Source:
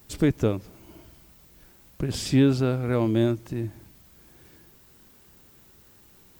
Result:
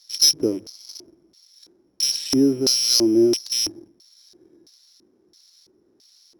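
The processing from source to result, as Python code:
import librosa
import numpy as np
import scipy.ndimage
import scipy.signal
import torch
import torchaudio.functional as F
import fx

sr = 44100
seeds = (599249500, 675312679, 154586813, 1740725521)

p1 = fx.rattle_buzz(x, sr, strikes_db=-33.0, level_db=-27.0)
p2 = (np.kron(scipy.signal.resample_poly(p1, 1, 8), np.eye(8)[0]) * 8)[:len(p1)]
p3 = fx.hum_notches(p2, sr, base_hz=50, count=3)
p4 = fx.fuzz(p3, sr, gain_db=25.0, gate_db=-31.0)
p5 = p3 + (p4 * librosa.db_to_amplitude(-5.5))
p6 = fx.filter_lfo_bandpass(p5, sr, shape='square', hz=1.5, low_hz=340.0, high_hz=4300.0, q=4.2)
y = p6 * librosa.db_to_amplitude(8.0)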